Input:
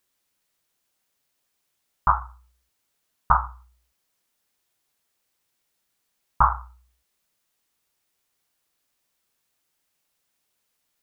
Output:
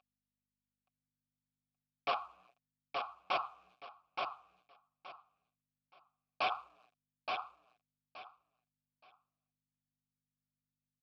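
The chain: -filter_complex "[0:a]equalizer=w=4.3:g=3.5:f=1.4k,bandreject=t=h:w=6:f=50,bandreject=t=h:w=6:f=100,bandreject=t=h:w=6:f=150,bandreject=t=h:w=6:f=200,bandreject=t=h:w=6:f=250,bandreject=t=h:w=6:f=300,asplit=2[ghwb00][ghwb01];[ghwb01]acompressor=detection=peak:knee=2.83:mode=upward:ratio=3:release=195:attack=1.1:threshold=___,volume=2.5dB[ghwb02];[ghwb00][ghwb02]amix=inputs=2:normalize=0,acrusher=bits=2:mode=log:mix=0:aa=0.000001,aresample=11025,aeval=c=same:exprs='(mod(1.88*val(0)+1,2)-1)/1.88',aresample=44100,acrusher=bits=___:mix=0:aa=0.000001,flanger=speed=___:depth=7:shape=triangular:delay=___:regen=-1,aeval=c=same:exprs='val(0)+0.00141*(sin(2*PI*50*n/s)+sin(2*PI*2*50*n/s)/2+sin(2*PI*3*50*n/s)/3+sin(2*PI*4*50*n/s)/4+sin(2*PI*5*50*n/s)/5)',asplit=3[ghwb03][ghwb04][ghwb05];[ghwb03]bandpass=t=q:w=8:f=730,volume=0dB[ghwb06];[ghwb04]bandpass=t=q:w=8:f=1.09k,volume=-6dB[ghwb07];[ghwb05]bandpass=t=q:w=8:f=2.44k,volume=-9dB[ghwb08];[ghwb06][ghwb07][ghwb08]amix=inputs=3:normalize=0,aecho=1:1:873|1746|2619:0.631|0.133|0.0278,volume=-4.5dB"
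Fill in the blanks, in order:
-37dB, 6, 1.5, 5.2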